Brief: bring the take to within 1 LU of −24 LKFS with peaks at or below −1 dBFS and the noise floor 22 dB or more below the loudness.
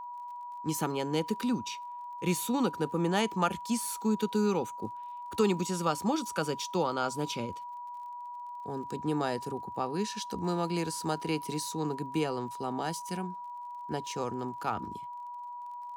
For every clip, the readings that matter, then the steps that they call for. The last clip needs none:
crackle rate 31 per second; interfering tone 970 Hz; level of the tone −39 dBFS; integrated loudness −33.0 LKFS; sample peak −14.0 dBFS; target loudness −24.0 LKFS
→ click removal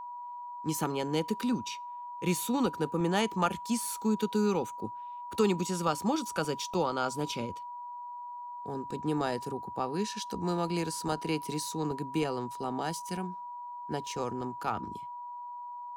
crackle rate 0.19 per second; interfering tone 970 Hz; level of the tone −39 dBFS
→ notch filter 970 Hz, Q 30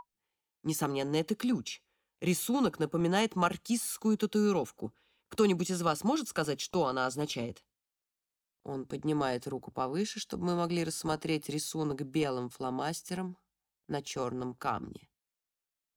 interfering tone none found; integrated loudness −33.0 LKFS; sample peak −14.5 dBFS; target loudness −24.0 LKFS
→ level +9 dB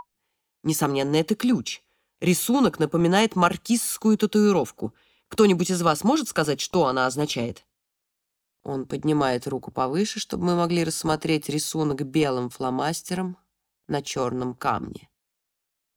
integrated loudness −24.0 LKFS; sample peak −5.5 dBFS; background noise floor −81 dBFS

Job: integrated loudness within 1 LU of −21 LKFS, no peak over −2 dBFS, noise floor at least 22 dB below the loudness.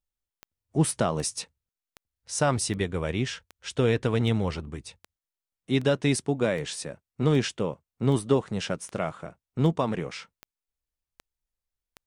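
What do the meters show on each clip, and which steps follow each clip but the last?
number of clicks 16; integrated loudness −27.5 LKFS; sample peak −10.0 dBFS; target loudness −21.0 LKFS
→ click removal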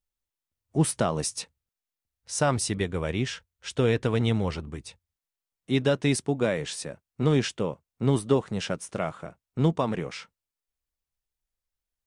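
number of clicks 0; integrated loudness −27.5 LKFS; sample peak −10.5 dBFS; target loudness −21.0 LKFS
→ level +6.5 dB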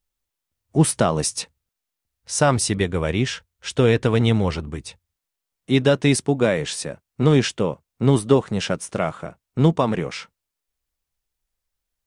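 integrated loudness −21.0 LKFS; sample peak −4.0 dBFS; background noise floor −84 dBFS

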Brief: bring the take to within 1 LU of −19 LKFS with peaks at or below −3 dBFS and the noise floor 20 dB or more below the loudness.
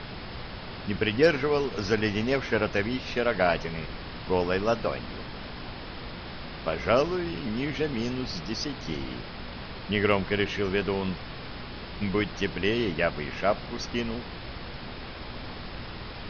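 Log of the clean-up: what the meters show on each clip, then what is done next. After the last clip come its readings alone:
mains hum 60 Hz; hum harmonics up to 240 Hz; level of the hum −45 dBFS; background noise floor −40 dBFS; target noise floor −50 dBFS; integrated loudness −29.5 LKFS; sample peak −9.5 dBFS; target loudness −19.0 LKFS
→ hum removal 60 Hz, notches 4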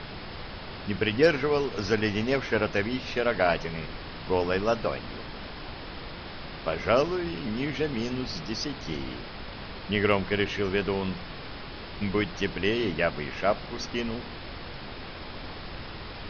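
mains hum none found; background noise floor −40 dBFS; target noise floor −49 dBFS
→ noise reduction from a noise print 9 dB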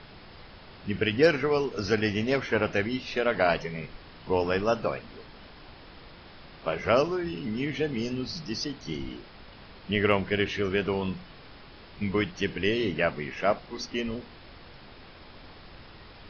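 background noise floor −49 dBFS; integrated loudness −28.0 LKFS; sample peak −9.5 dBFS; target loudness −19.0 LKFS
→ level +9 dB
brickwall limiter −3 dBFS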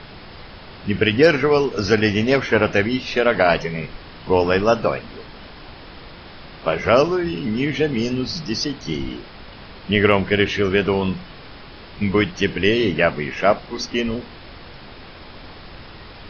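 integrated loudness −19.5 LKFS; sample peak −3.0 dBFS; background noise floor −40 dBFS

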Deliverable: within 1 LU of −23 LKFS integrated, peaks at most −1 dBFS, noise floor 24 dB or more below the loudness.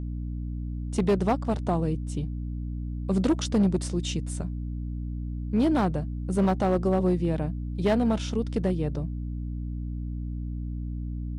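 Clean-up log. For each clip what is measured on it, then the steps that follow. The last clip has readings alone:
share of clipped samples 1.0%; peaks flattened at −17.0 dBFS; mains hum 60 Hz; hum harmonics up to 300 Hz; level of the hum −30 dBFS; integrated loudness −28.0 LKFS; sample peak −17.0 dBFS; target loudness −23.0 LKFS
→ clipped peaks rebuilt −17 dBFS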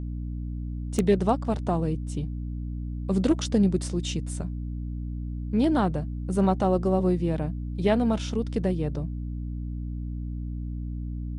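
share of clipped samples 0.0%; mains hum 60 Hz; hum harmonics up to 300 Hz; level of the hum −29 dBFS
→ hum removal 60 Hz, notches 5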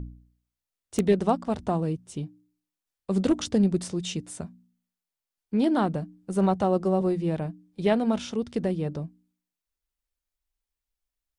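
mains hum none found; integrated loudness −26.5 LKFS; sample peak −8.0 dBFS; target loudness −23.0 LKFS
→ level +3.5 dB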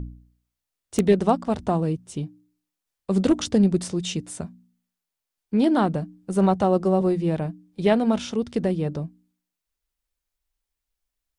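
integrated loudness −23.0 LKFS; sample peak −4.5 dBFS; background noise floor −85 dBFS

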